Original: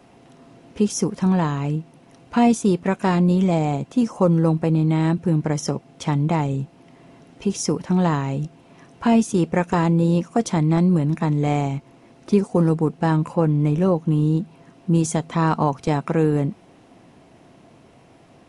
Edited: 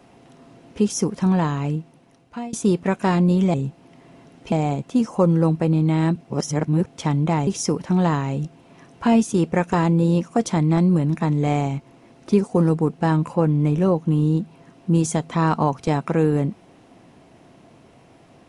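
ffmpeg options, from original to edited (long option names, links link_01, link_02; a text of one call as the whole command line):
ffmpeg -i in.wav -filter_complex "[0:a]asplit=7[link_01][link_02][link_03][link_04][link_05][link_06][link_07];[link_01]atrim=end=2.53,asetpts=PTS-STARTPTS,afade=type=out:start_time=1.67:duration=0.86:silence=0.0707946[link_08];[link_02]atrim=start=2.53:end=3.542,asetpts=PTS-STARTPTS,afade=type=in:duration=0.004:curve=hsin:silence=0.0707946[link_09];[link_03]atrim=start=6.488:end=7.472[link_10];[link_04]atrim=start=3.538:end=5.232[link_11];[link_05]atrim=start=5.228:end=5.882,asetpts=PTS-STARTPTS,areverse[link_12];[link_06]atrim=start=5.878:end=6.492[link_13];[link_07]atrim=start=7.468[link_14];[link_08][link_09]concat=n=2:v=0:a=1[link_15];[link_15][link_10]acrossfade=duration=0.004:curve1=hsin:curve2=hsin[link_16];[link_16][link_11]acrossfade=duration=0.004:curve1=hsin:curve2=hsin[link_17];[link_17][link_12]acrossfade=duration=0.004:curve1=hsin:curve2=hsin[link_18];[link_18][link_13]acrossfade=duration=0.004:curve1=hsin:curve2=hsin[link_19];[link_19][link_14]acrossfade=duration=0.004:curve1=hsin:curve2=hsin" out.wav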